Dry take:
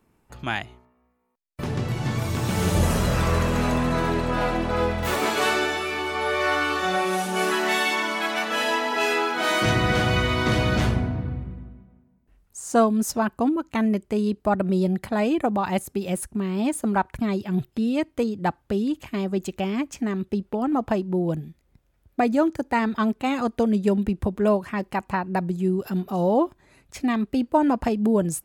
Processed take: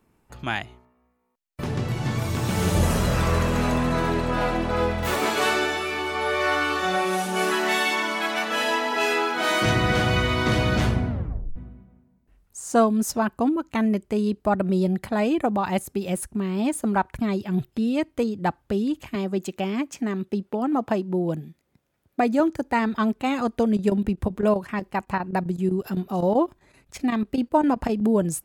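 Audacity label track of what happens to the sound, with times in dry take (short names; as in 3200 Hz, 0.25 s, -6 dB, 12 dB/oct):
11.090000	11.090000	tape stop 0.47 s
19.150000	22.400000	HPF 140 Hz
23.660000	28.010000	chopper 7.8 Hz, depth 65%, duty 85%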